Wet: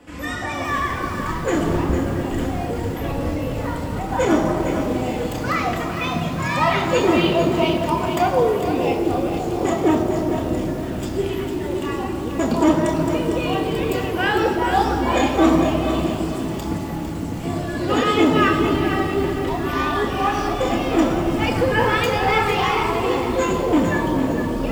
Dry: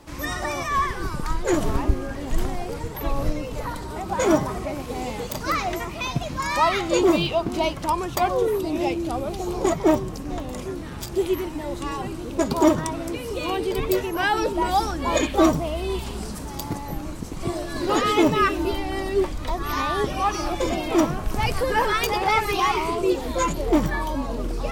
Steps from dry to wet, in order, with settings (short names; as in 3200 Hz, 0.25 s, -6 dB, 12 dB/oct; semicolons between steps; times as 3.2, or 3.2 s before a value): reverb RT60 3.4 s, pre-delay 3 ms, DRR 1 dB; lo-fi delay 0.453 s, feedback 35%, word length 5-bit, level -8 dB; gain -7.5 dB